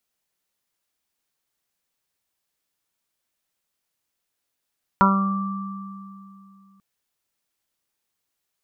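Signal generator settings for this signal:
harmonic partials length 1.79 s, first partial 195 Hz, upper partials −11/−10/−13.5/4/−2.5/1 dB, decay 2.88 s, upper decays 0.69/0.78/0.80/0.39/2.50/0.47 s, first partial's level −16.5 dB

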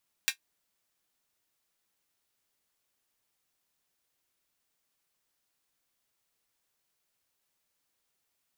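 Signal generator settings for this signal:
closed synth hi-hat, high-pass 2,000 Hz, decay 0.10 s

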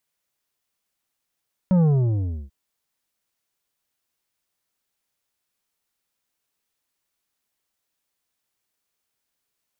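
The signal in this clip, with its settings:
bass drop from 190 Hz, over 0.79 s, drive 8.5 dB, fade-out 0.69 s, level −15 dB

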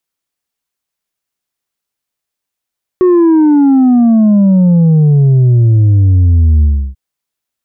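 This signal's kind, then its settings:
bass drop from 370 Hz, over 3.94 s, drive 3.5 dB, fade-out 0.32 s, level −5 dB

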